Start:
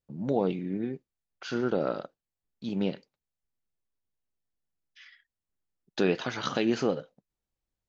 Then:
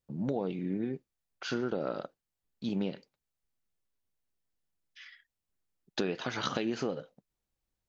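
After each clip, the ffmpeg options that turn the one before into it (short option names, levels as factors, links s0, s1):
-af "acompressor=threshold=0.0316:ratio=6,volume=1.19"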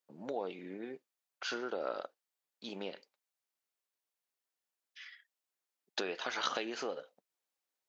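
-af "highpass=520"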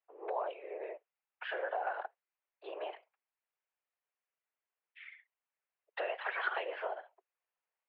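-af "afftfilt=real='hypot(re,im)*cos(2*PI*random(0))':imag='hypot(re,im)*sin(2*PI*random(1))':win_size=512:overlap=0.75,highpass=f=190:t=q:w=0.5412,highpass=f=190:t=q:w=1.307,lowpass=f=2600:t=q:w=0.5176,lowpass=f=2600:t=q:w=0.7071,lowpass=f=2600:t=q:w=1.932,afreqshift=170,volume=2.24"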